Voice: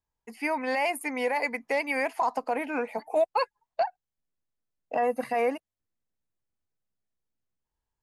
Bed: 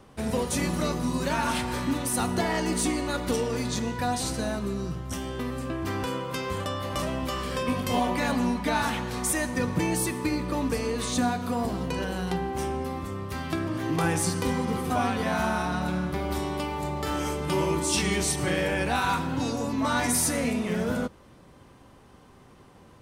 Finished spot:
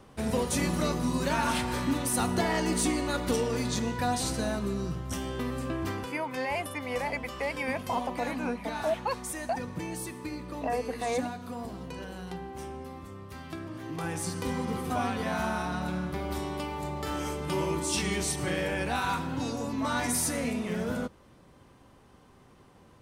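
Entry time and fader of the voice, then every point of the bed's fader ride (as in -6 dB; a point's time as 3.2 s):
5.70 s, -5.0 dB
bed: 5.84 s -1 dB
6.14 s -10 dB
13.93 s -10 dB
14.61 s -4 dB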